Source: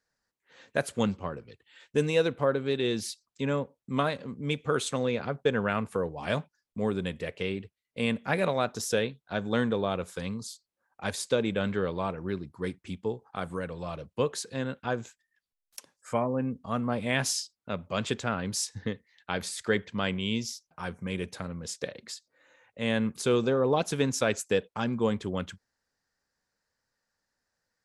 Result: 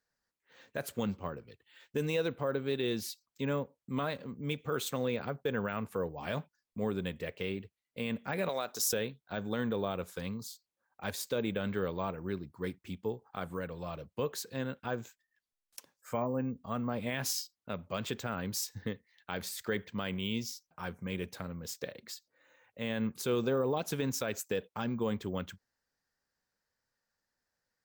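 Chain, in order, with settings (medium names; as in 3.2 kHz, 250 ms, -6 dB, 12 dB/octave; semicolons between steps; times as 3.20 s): peak limiter -18 dBFS, peak gain reduction 7 dB; 8.49–8.93 s: tone controls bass -14 dB, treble +9 dB; careless resampling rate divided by 2×, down none, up hold; trim -4 dB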